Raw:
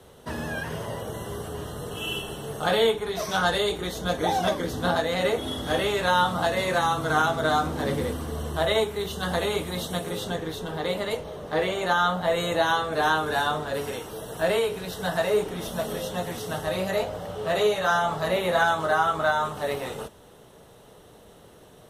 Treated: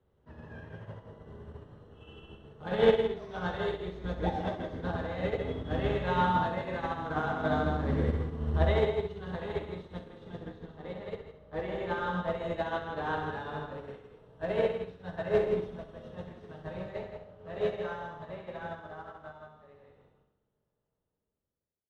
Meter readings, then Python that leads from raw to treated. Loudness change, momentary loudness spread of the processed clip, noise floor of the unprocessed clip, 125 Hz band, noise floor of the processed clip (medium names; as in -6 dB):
-6.5 dB, 19 LU, -51 dBFS, -2.5 dB, -83 dBFS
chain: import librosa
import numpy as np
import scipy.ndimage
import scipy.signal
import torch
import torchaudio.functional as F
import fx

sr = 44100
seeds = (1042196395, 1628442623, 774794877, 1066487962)

p1 = fx.fade_out_tail(x, sr, length_s=5.28)
p2 = fx.quant_float(p1, sr, bits=2)
p3 = fx.low_shelf(p2, sr, hz=230.0, db=9.5)
p4 = fx.notch(p3, sr, hz=710.0, q=17.0)
p5 = p4 + fx.echo_single(p4, sr, ms=162, db=-4.0, dry=0)
p6 = fx.dynamic_eq(p5, sr, hz=1300.0, q=4.4, threshold_db=-40.0, ratio=4.0, max_db=-4)
p7 = scipy.signal.sosfilt(scipy.signal.butter(2, 2400.0, 'lowpass', fs=sr, output='sos'), p6)
p8 = fx.room_flutter(p7, sr, wall_m=11.3, rt60_s=0.73)
p9 = fx.upward_expand(p8, sr, threshold_db=-29.0, expansion=2.5)
y = p9 * 10.0 ** (-2.5 / 20.0)